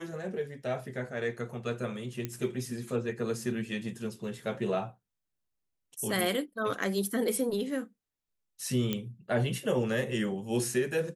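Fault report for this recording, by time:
2.25 s: pop -18 dBFS
8.93 s: pop -16 dBFS

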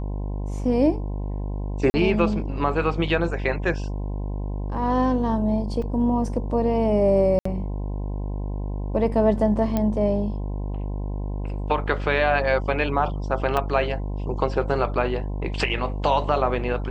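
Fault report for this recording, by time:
buzz 50 Hz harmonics 21 -28 dBFS
1.90–1.94 s: dropout 40 ms
5.82 s: dropout 3.3 ms
7.39–7.45 s: dropout 64 ms
9.77 s: pop -11 dBFS
13.57 s: dropout 3 ms

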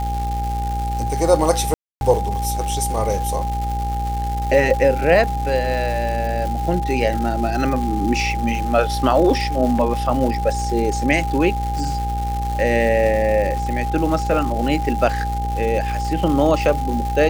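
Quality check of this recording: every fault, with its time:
buzz 60 Hz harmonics 14 -24 dBFS
crackle 390 per s -26 dBFS
whine 810 Hz -24 dBFS
1.74–2.01 s: dropout 271 ms

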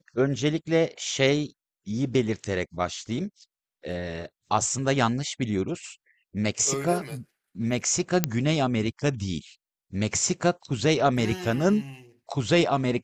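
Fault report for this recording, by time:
8.24 s: pop -5 dBFS

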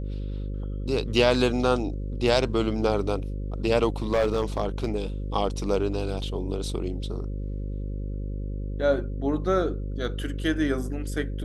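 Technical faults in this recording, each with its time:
buzz 50 Hz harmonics 11 -31 dBFS
4.12–4.95 s: clipped -17.5 dBFS

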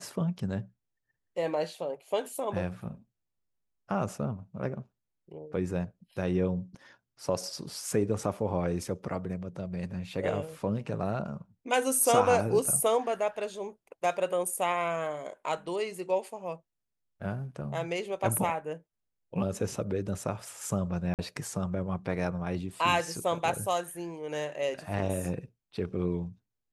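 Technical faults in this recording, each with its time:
21.14–21.19 s: dropout 48 ms

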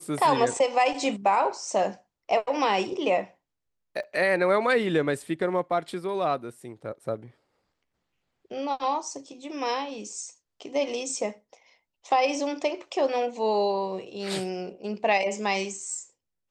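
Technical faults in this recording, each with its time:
4.03–4.04 s: dropout 5.6 ms

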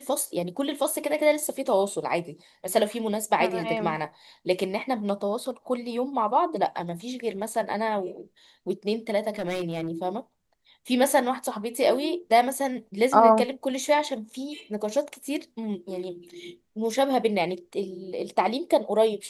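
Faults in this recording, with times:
9.38–9.89 s: clipped -25 dBFS

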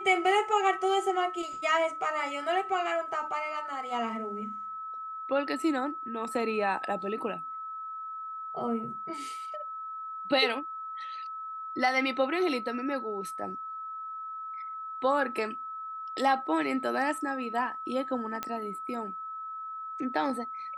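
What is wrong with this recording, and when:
whine 1.3 kHz -36 dBFS
18.43 s: pop -17 dBFS

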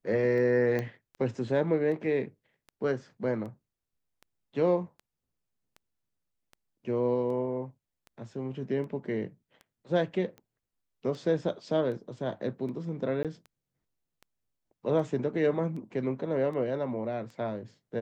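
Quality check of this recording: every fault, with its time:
tick 78 rpm
0.79 s: pop -20 dBFS
13.23–13.25 s: dropout 17 ms

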